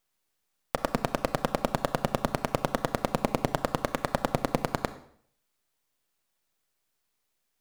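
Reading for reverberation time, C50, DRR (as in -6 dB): 0.60 s, 14.0 dB, 12.0 dB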